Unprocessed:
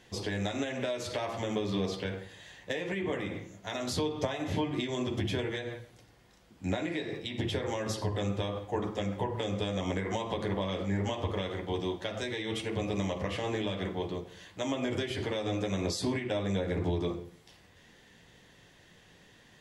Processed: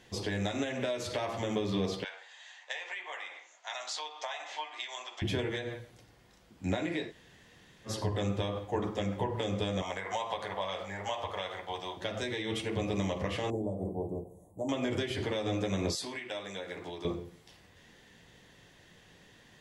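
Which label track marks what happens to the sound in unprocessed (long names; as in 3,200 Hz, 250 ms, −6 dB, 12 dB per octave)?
2.040000	5.220000	Chebyshev band-pass filter 770–7,400 Hz, order 3
7.080000	7.890000	fill with room tone, crossfade 0.10 s
9.820000	11.970000	low shelf with overshoot 470 Hz −13 dB, Q 1.5
13.500000	14.690000	elliptic band-stop filter 760–8,800 Hz
15.950000	17.050000	high-pass filter 1,200 Hz 6 dB per octave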